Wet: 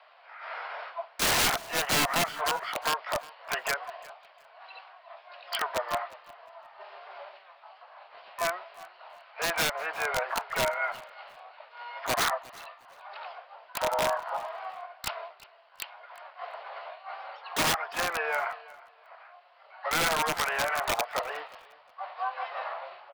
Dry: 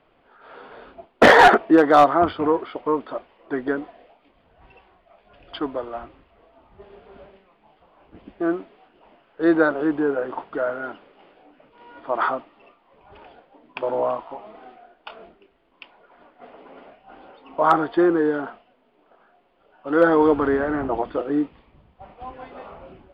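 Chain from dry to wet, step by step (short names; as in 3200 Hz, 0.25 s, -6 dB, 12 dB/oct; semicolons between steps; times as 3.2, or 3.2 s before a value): elliptic band-pass 640–3100 Hz, stop band 40 dB; compressor 3:1, threshold -34 dBFS, peak gain reduction 19 dB; wrapped overs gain 26.5 dB; harmoniser +7 st -5 dB; feedback echo 0.357 s, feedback 21%, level -21 dB; gain +6 dB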